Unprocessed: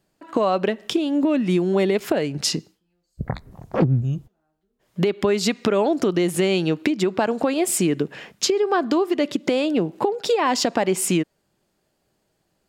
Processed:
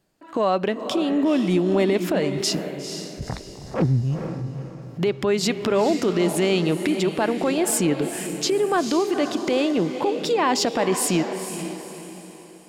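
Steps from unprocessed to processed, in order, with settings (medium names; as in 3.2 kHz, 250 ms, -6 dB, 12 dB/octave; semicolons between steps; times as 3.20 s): echo that smears into a reverb 474 ms, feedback 41%, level -9 dB; transient shaper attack -5 dB, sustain 0 dB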